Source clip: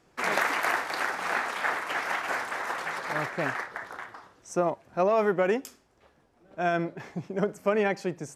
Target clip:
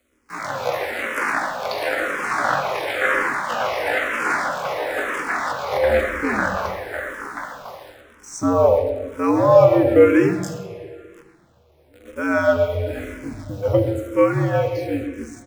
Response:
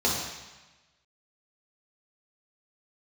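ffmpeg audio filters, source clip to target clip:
-filter_complex "[0:a]equalizer=frequency=610:width=3.8:gain=6,dynaudnorm=framelen=130:gausssize=11:maxgain=8.5dB,atempo=0.54,acrusher=bits=8:dc=4:mix=0:aa=0.000001,asplit=2[link_01][link_02];[link_02]adelay=130,highpass=300,lowpass=3400,asoftclip=type=hard:threshold=-12.5dB,volume=-10dB[link_03];[link_01][link_03]amix=inputs=2:normalize=0,afreqshift=-78,asplit=2[link_04][link_05];[1:a]atrim=start_sample=2205,asetrate=25137,aresample=44100[link_06];[link_05][link_06]afir=irnorm=-1:irlink=0,volume=-21dB[link_07];[link_04][link_07]amix=inputs=2:normalize=0,asplit=2[link_08][link_09];[link_09]afreqshift=-1[link_10];[link_08][link_10]amix=inputs=2:normalize=1"

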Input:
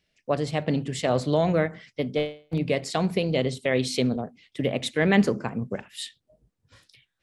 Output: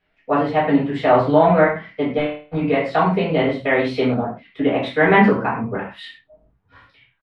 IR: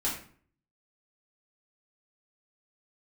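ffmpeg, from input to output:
-filter_complex "[0:a]firequalizer=gain_entry='entry(180,0);entry(990,12);entry(7000,-25);entry(10000,-22)':delay=0.05:min_phase=1[link_01];[1:a]atrim=start_sample=2205,afade=type=out:start_time=0.19:duration=0.01,atrim=end_sample=8820[link_02];[link_01][link_02]afir=irnorm=-1:irlink=0,volume=-3dB"

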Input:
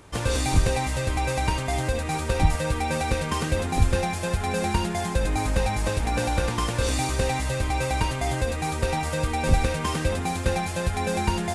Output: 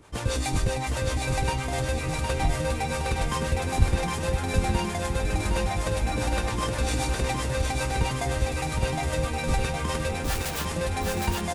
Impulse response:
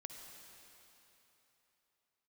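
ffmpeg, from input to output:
-filter_complex "[0:a]asettb=1/sr,asplit=3[link_01][link_02][link_03];[link_01]atrim=end=10.244[link_04];[link_02]atrim=start=10.24:end=10.65,asetpts=PTS-STARTPTS,afade=type=in:duration=0.004:curve=qsin,afade=type=out:start_time=0.406:duration=0.004:curve=qsin,aeval=exprs='(mod(17.8*val(0)+1,2)-1)/17.8':channel_layout=same[link_05];[link_03]atrim=start=10.646[link_06];[link_04][link_05]acrossfade=duration=0.004:curve1=hsin:curve2=qsin[link_07];[link_07][link_06]acrossfade=duration=0.004:curve1=qsin:curve2=hsin,acrossover=split=430[link_08][link_09];[link_08]aeval=exprs='val(0)*(1-0.7/2+0.7/2*cos(2*PI*7.6*n/s))':channel_layout=same[link_10];[link_09]aeval=exprs='val(0)*(1-0.7/2-0.7/2*cos(2*PI*7.6*n/s))':channel_layout=same[link_11];[link_10][link_11]amix=inputs=2:normalize=0,aecho=1:1:762|1524|2286|3048|3810|4572:0.631|0.309|0.151|0.0742|0.0364|0.0178"

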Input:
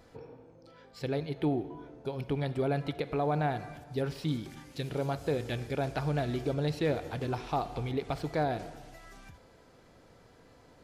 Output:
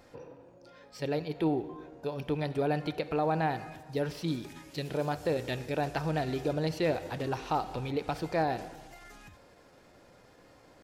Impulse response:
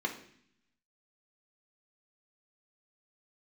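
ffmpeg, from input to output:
-filter_complex "[0:a]asetrate=46722,aresample=44100,atempo=0.943874,bass=frequency=250:gain=-5,treble=frequency=4000:gain=0,asplit=2[link_01][link_02];[1:a]atrim=start_sample=2205[link_03];[link_02][link_03]afir=irnorm=-1:irlink=0,volume=-24.5dB[link_04];[link_01][link_04]amix=inputs=2:normalize=0,volume=2dB"

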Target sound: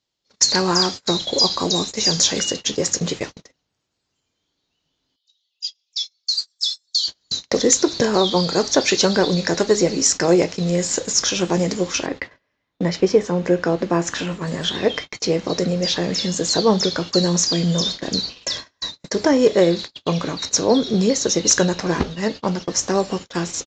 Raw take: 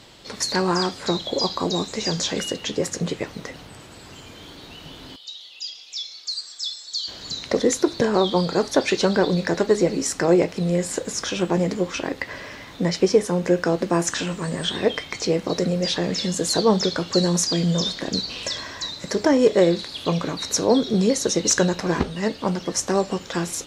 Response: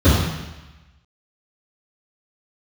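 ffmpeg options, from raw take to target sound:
-af "agate=range=-37dB:threshold=-30dB:ratio=16:detection=peak,asetnsamples=nb_out_samples=441:pad=0,asendcmd='12.06 equalizer g -3.5;14.47 equalizer g 3',equalizer=frequency=6300:width_type=o:width=1.4:gain=10,aresample=16000,aresample=44100,volume=1.5dB"

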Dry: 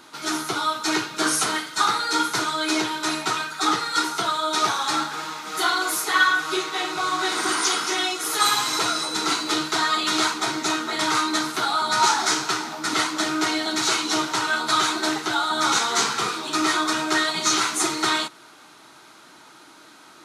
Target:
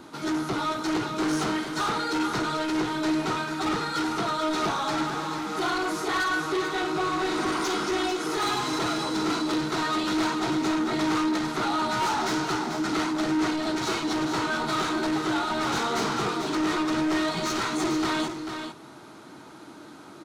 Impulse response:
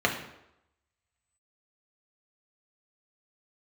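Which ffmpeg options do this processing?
-filter_complex "[0:a]acrossover=split=6800[link_01][link_02];[link_02]acompressor=threshold=-44dB:ratio=4:attack=1:release=60[link_03];[link_01][link_03]amix=inputs=2:normalize=0,tiltshelf=frequency=730:gain=8,asoftclip=type=tanh:threshold=-26dB,asplit=2[link_04][link_05];[link_05]aecho=0:1:442:0.422[link_06];[link_04][link_06]amix=inputs=2:normalize=0,volume=2.5dB"

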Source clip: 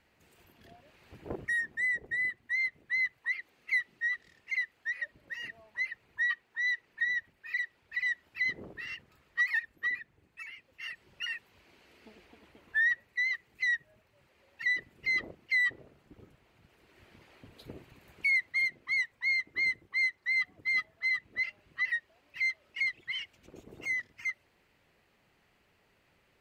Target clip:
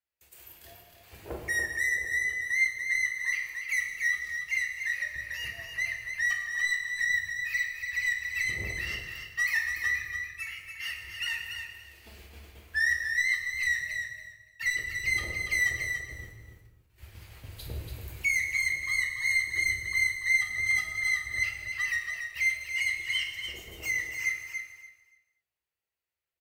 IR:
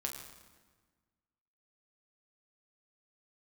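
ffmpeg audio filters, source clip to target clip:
-filter_complex "[0:a]aemphasis=mode=production:type=75fm,agate=range=-31dB:threshold=-57dB:ratio=16:detection=peak,equalizer=frequency=220:width_type=o:width=1:gain=-11.5,acrossover=split=150|800[link_01][link_02][link_03];[link_01]dynaudnorm=framelen=250:gausssize=31:maxgain=14dB[link_04];[link_03]asoftclip=type=tanh:threshold=-28dB[link_05];[link_04][link_02][link_05]amix=inputs=3:normalize=0,aecho=1:1:286|572|858:0.473|0.0946|0.0189[link_06];[1:a]atrim=start_sample=2205,afade=type=out:start_time=0.3:duration=0.01,atrim=end_sample=13671[link_07];[link_06][link_07]afir=irnorm=-1:irlink=0,volume=4dB"

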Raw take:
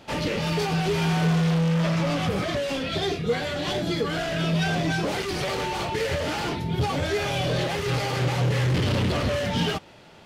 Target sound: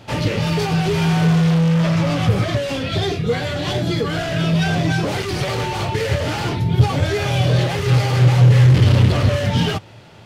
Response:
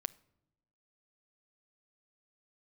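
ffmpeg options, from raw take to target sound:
-af "equalizer=frequency=110:width_type=o:width=0.54:gain=14,volume=4dB"

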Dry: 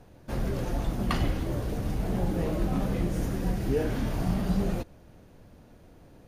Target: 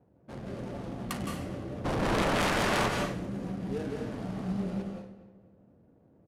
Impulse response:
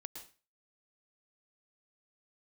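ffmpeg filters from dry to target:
-filter_complex "[0:a]adynamicsmooth=sensitivity=6.5:basefreq=650,highpass=110,asplit=2[link_01][link_02];[link_02]adelay=244,lowpass=frequency=2800:poles=1,volume=-15dB,asplit=2[link_03][link_04];[link_04]adelay=244,lowpass=frequency=2800:poles=1,volume=0.38,asplit=2[link_05][link_06];[link_06]adelay=244,lowpass=frequency=2800:poles=1,volume=0.38[link_07];[link_01][link_03][link_05][link_07]amix=inputs=4:normalize=0,asplit=3[link_08][link_09][link_10];[link_08]afade=type=out:start_time=1.84:duration=0.02[link_11];[link_09]aeval=exprs='0.126*sin(PI/2*7.08*val(0)/0.126)':channel_layout=same,afade=type=in:start_time=1.84:duration=0.02,afade=type=out:start_time=2.87:duration=0.02[link_12];[link_10]afade=type=in:start_time=2.87:duration=0.02[link_13];[link_11][link_12][link_13]amix=inputs=3:normalize=0,equalizer=frequency=10000:width=2:gain=5,asoftclip=type=tanh:threshold=-16.5dB,crystalizer=i=2.5:c=0[link_14];[1:a]atrim=start_sample=2205,asetrate=29106,aresample=44100[link_15];[link_14][link_15]afir=irnorm=-1:irlink=0,volume=-4dB"

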